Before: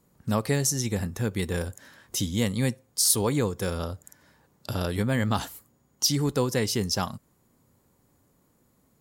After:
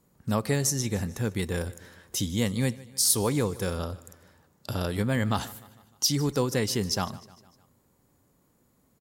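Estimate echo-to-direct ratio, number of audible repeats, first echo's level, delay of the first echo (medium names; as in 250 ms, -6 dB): -18.5 dB, 3, -20.0 dB, 152 ms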